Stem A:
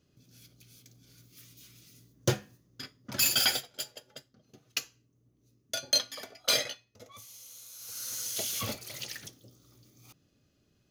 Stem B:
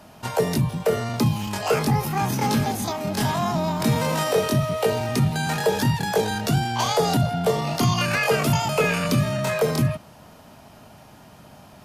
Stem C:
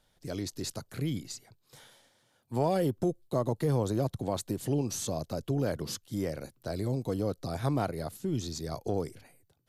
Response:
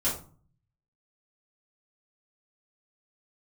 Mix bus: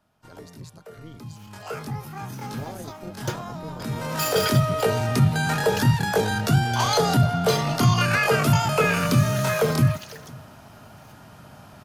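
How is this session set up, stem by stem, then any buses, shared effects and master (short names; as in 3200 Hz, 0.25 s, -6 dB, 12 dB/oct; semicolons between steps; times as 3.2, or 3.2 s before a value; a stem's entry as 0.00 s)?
-3.5 dB, 1.00 s, no send, no echo send, dry
1.19 s -23.5 dB -> 1.63 s -13.5 dB -> 3.8 s -13.5 dB -> 4.44 s -1 dB, 0.00 s, no send, echo send -23 dB, bell 110 Hz +5.5 dB 0.85 oct
-8.5 dB, 0.00 s, no send, no echo send, AM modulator 160 Hz, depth 80%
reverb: off
echo: echo 0.507 s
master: bell 1400 Hz +6.5 dB 0.5 oct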